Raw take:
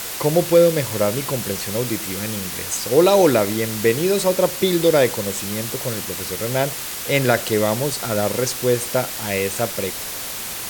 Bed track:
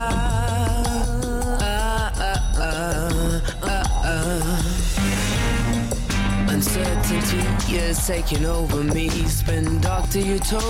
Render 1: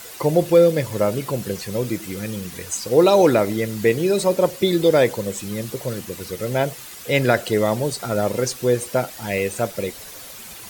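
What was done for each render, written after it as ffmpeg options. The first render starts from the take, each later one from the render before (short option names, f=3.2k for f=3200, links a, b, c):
-af "afftdn=nr=11:nf=-29"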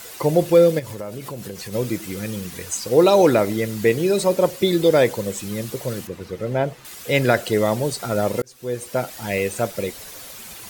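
-filter_complex "[0:a]asplit=3[a][b][c];[a]afade=t=out:st=0.78:d=0.02[d];[b]acompressor=threshold=-29dB:ratio=4:attack=3.2:release=140:knee=1:detection=peak,afade=t=in:st=0.78:d=0.02,afade=t=out:st=1.72:d=0.02[e];[c]afade=t=in:st=1.72:d=0.02[f];[d][e][f]amix=inputs=3:normalize=0,asettb=1/sr,asplit=3[g][h][i];[g]atrim=end=6.074[j];[h]atrim=start=6.07:end=6.85,asetpts=PTS-STARTPTS,afade=t=in:d=0.004:c=qsin,afade=t=out:st=0.776:d=0.004:c=qsin,lowpass=f=1.6k:p=1[k];[i]atrim=start=6.846[l];[j][k]acrossfade=d=0.004:c1=hsin:c2=qsin[m];[m][l]acrossfade=d=0.004:c1=qsin:c2=hsin,asplit=2[n][o];[n]atrim=end=8.42,asetpts=PTS-STARTPTS,afade=t=out:st=8.416:d=0.004:c=hsin[p];[o]atrim=start=8.42,asetpts=PTS-STARTPTS,afade=t=in:d=0.72[q];[p][q]concat=n=2:v=0:a=1"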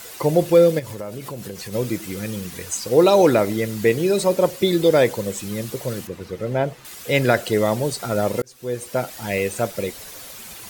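-af anull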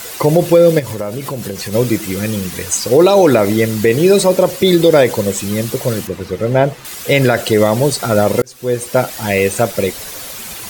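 -af "alimiter=level_in=9.5dB:limit=-1dB:release=50:level=0:latency=1"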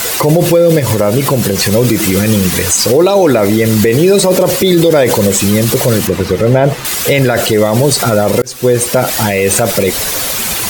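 -af "alimiter=level_in=12.5dB:limit=-1dB:release=50:level=0:latency=1"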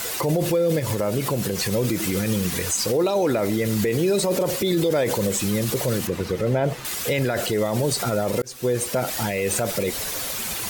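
-af "volume=-12.5dB"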